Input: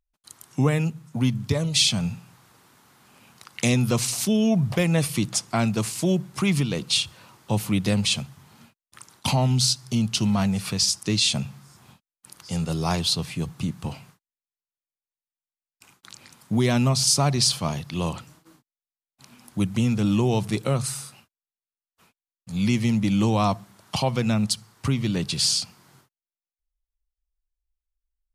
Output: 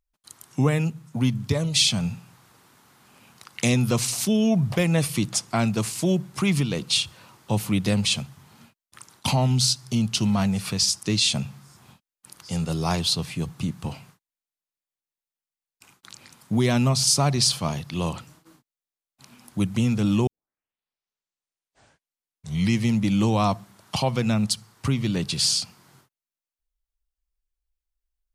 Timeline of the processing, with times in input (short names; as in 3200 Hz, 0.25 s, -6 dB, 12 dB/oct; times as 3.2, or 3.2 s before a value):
20.27 tape start 2.57 s